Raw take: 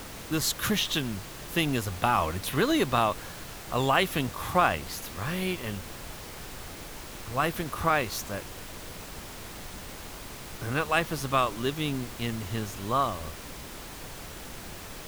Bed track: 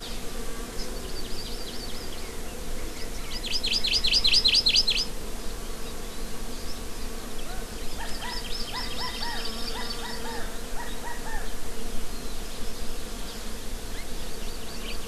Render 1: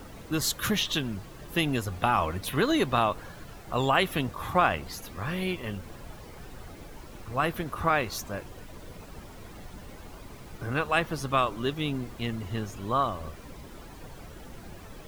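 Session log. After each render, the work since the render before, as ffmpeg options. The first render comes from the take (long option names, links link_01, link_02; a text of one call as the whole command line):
ffmpeg -i in.wav -af "afftdn=noise_reduction=11:noise_floor=-42" out.wav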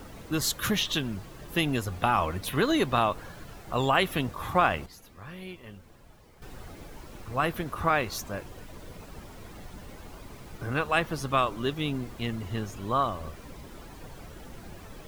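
ffmpeg -i in.wav -filter_complex "[0:a]asplit=3[link_01][link_02][link_03];[link_01]atrim=end=4.862[link_04];[link_02]atrim=start=4.858:end=6.422,asetpts=PTS-STARTPTS,volume=-11dB[link_05];[link_03]atrim=start=6.418[link_06];[link_04][link_05]acrossfade=duration=0.004:curve1=hsin:curve2=hsin[link_07];[link_07][link_06]acrossfade=duration=0.004:curve1=hsin:curve2=hsin" out.wav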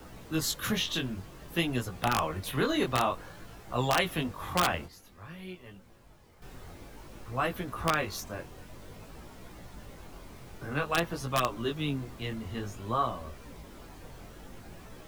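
ffmpeg -i in.wav -filter_complex "[0:a]flanger=delay=16:depth=7.4:speed=0.53,acrossover=split=210|550|1900[link_01][link_02][link_03][link_04];[link_03]aeval=exprs='(mod(9.44*val(0)+1,2)-1)/9.44':channel_layout=same[link_05];[link_01][link_02][link_05][link_04]amix=inputs=4:normalize=0" out.wav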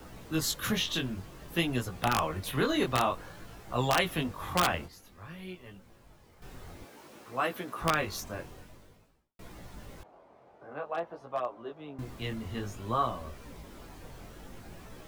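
ffmpeg -i in.wav -filter_complex "[0:a]asettb=1/sr,asplit=3[link_01][link_02][link_03];[link_01]atrim=end=6.854[link_04];[link_02]atrim=start=6.85:end=7.82,asetpts=PTS-STARTPTS,afade=type=in:duration=0.004:curve=qsin,afade=type=out:start_time=0.966:duration=0.004:curve=qsin,highpass=240[link_05];[link_03]atrim=start=7.816[link_06];[link_04][link_05]acrossfade=duration=0.004:curve1=hsin:curve2=qsin[link_07];[link_07][link_06]acrossfade=duration=0.004:curve1=qsin:curve2=hsin,asettb=1/sr,asplit=3[link_08][link_09][link_10];[link_08]atrim=end=10.034[link_11];[link_09]atrim=start=10.03:end=11.99,asetpts=PTS-STARTPTS,afade=type=in:duration=0.004:curve=qsin,afade=type=out:start_time=1.956:duration=0.004:curve=qsin,bandpass=frequency=680:width_type=q:width=2[link_12];[link_10]atrim=start=11.986[link_13];[link_11][link_12]acrossfade=duration=0.004:curve1=hsin:curve2=qsin[link_14];[link_14][link_13]acrossfade=duration=0.004:curve1=qsin:curve2=hsin,asplit=2[link_15][link_16];[link_15]atrim=end=9.39,asetpts=PTS-STARTPTS,afade=type=out:start_time=8.5:duration=0.89:curve=qua[link_17];[link_16]atrim=start=9.39,asetpts=PTS-STARTPTS,afade=type=in:duration=0.004:curve=hsin[link_18];[link_17][link_18]concat=n=2:v=0:a=1" out.wav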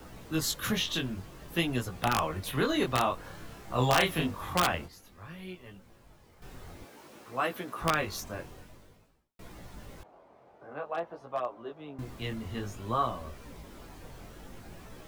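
ffmpeg -i in.wav -filter_complex "[0:a]asettb=1/sr,asplit=3[link_01][link_02][link_03];[link_01]atrim=end=3.214[link_04];[link_02]atrim=start=3.21:end=4.41,asetpts=PTS-STARTPTS,afade=type=in:duration=0.004:curve=qsin,afade=type=out:start_time=1.196:duration=0.004:curve=qsin,asplit=2[link_05][link_06];[link_06]adelay=31,volume=-3dB[link_07];[link_05][link_07]amix=inputs=2:normalize=0,atrim=end_sample=52920[link_08];[link_03]atrim=start=4.406[link_09];[link_04][link_08]acrossfade=duration=0.004:curve1=hsin:curve2=qsin[link_10];[link_10][link_09]acrossfade=duration=0.004:curve1=qsin:curve2=hsin" out.wav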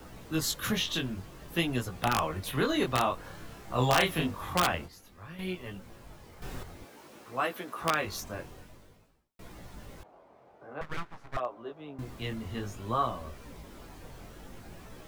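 ffmpeg -i in.wav -filter_complex "[0:a]asettb=1/sr,asplit=3[link_01][link_02][link_03];[link_01]atrim=end=7.454[link_04];[link_02]atrim=start=7.45:end=8.05,asetpts=PTS-STARTPTS,afade=type=in:duration=0.004:curve=qsin,afade=type=out:start_time=0.596:duration=0.004:curve=qsin,highpass=frequency=230:poles=1[link_05];[link_03]atrim=start=8.046[link_06];[link_04][link_05]acrossfade=duration=0.004:curve1=hsin:curve2=qsin[link_07];[link_07][link_06]acrossfade=duration=0.004:curve1=qsin:curve2=hsin,asettb=1/sr,asplit=3[link_08][link_09][link_10];[link_08]atrim=end=10.814[link_11];[link_09]atrim=start=10.81:end=11.37,asetpts=PTS-STARTPTS,afade=type=in:duration=0.004:curve=qsin,afade=type=out:start_time=0.556:duration=0.004:curve=qsin,aeval=exprs='abs(val(0))':channel_layout=same[link_12];[link_10]atrim=start=11.366[link_13];[link_11][link_12]acrossfade=duration=0.004:curve1=hsin:curve2=qsin[link_14];[link_14][link_13]acrossfade=duration=0.004:curve1=qsin:curve2=hsin,asplit=3[link_15][link_16][link_17];[link_15]atrim=end=5.392[link_18];[link_16]atrim=start=5.388:end=6.632,asetpts=PTS-STARTPTS,volume=7.5dB[link_19];[link_17]atrim=start=6.628[link_20];[link_18][link_19]acrossfade=duration=0.004:curve1=hsin:curve2=hsin[link_21];[link_21][link_20]acrossfade=duration=0.004:curve1=hsin:curve2=hsin" out.wav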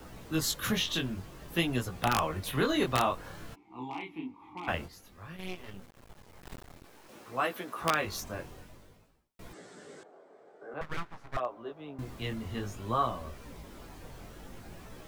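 ffmpeg -i in.wav -filter_complex "[0:a]asplit=3[link_01][link_02][link_03];[link_01]afade=type=out:start_time=3.54:duration=0.02[link_04];[link_02]asplit=3[link_05][link_06][link_07];[link_05]bandpass=frequency=300:width_type=q:width=8,volume=0dB[link_08];[link_06]bandpass=frequency=870:width_type=q:width=8,volume=-6dB[link_09];[link_07]bandpass=frequency=2240:width_type=q:width=8,volume=-9dB[link_10];[link_08][link_09][link_10]amix=inputs=3:normalize=0,afade=type=in:start_time=3.54:duration=0.02,afade=type=out:start_time=4.67:duration=0.02[link_11];[link_03]afade=type=in:start_time=4.67:duration=0.02[link_12];[link_04][link_11][link_12]amix=inputs=3:normalize=0,asettb=1/sr,asplit=3[link_13][link_14][link_15];[link_13]atrim=end=5.364[link_16];[link_14]atrim=start=5.36:end=7.09,asetpts=PTS-STARTPTS,afade=type=in:duration=0.004:curve=qsin,afade=type=out:start_time=1.726:duration=0.004:curve=qsin,aeval=exprs='max(val(0),0)':channel_layout=same[link_17];[link_15]atrim=start=7.086[link_18];[link_16][link_17]acrossfade=duration=0.004:curve1=hsin:curve2=qsin[link_19];[link_19][link_18]acrossfade=duration=0.004:curve1=qsin:curve2=hsin,asettb=1/sr,asplit=3[link_20][link_21][link_22];[link_20]atrim=end=9.534[link_23];[link_21]atrim=start=9.53:end=10.74,asetpts=PTS-STARTPTS,afade=type=in:duration=0.004:curve=qsin,afade=type=out:start_time=1.206:duration=0.004:curve=qsin,highpass=frequency=180:width=0.5412,highpass=frequency=180:width=1.3066,equalizer=frequency=210:width_type=q:width=4:gain=-5,equalizer=frequency=420:width_type=q:width=4:gain=9,equalizer=frequency=960:width_type=q:width=4:gain=-7,equalizer=frequency=1600:width_type=q:width=4:gain=5,equalizer=frequency=2600:width_type=q:width=4:gain=-6,equalizer=frequency=8000:width_type=q:width=4:gain=9,lowpass=frequency=8200:width=0.5412,lowpass=frequency=8200:width=1.3066[link_24];[link_22]atrim=start=10.736[link_25];[link_23][link_24]acrossfade=duration=0.004:curve1=hsin:curve2=qsin[link_26];[link_26][link_25]acrossfade=duration=0.004:curve1=qsin:curve2=hsin" out.wav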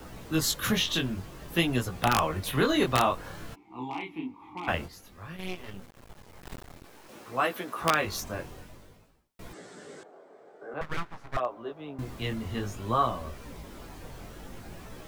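ffmpeg -i in.wav -af "volume=3.5dB" out.wav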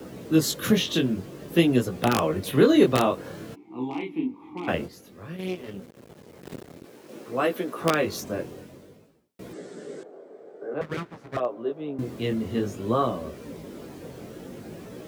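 ffmpeg -i in.wav -af "highpass=150,lowshelf=frequency=640:width_type=q:width=1.5:gain=7.5" out.wav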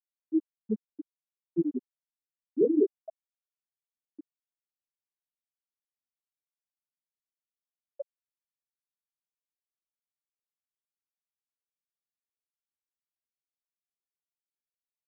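ffmpeg -i in.wav -af "afftfilt=real='re*gte(hypot(re,im),1)':imag='im*gte(hypot(re,im),1)':win_size=1024:overlap=0.75,lowshelf=frequency=350:gain=-10" out.wav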